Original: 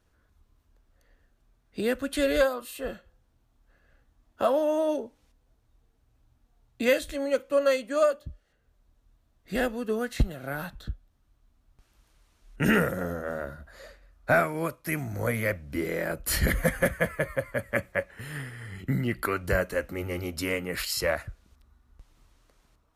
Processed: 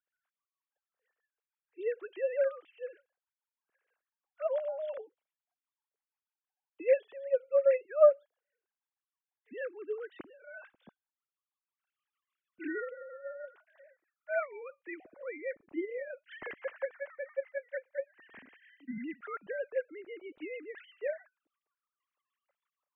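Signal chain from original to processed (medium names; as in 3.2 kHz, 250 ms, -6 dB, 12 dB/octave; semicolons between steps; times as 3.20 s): formants replaced by sine waves; rotary cabinet horn 6.3 Hz; trim -4.5 dB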